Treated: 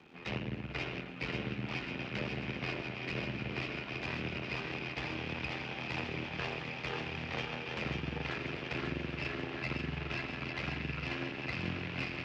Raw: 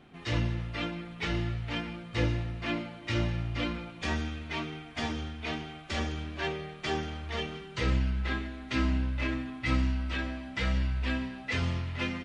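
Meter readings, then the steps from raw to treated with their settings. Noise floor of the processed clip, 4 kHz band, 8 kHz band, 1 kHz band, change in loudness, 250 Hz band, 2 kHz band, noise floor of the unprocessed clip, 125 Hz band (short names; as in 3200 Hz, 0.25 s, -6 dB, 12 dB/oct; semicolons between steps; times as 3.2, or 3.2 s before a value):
-44 dBFS, -4.0 dB, -10.0 dB, -4.0 dB, -5.0 dB, -6.5 dB, -1.5 dB, -46 dBFS, -8.0 dB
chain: regenerating reverse delay 0.63 s, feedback 78%, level -11 dB; HPF 74 Hz 12 dB/oct; bell 2500 Hz +12 dB 0.3 oct; compressor, threshold -33 dBFS, peak gain reduction 10 dB; ring modulator 41 Hz; added harmonics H 6 -11 dB, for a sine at -21.5 dBFS; frequency shift +48 Hz; crackle 250/s -44 dBFS; air absorption 220 m; on a send: thinning echo 0.541 s, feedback 62%, high-pass 900 Hz, level -3.5 dB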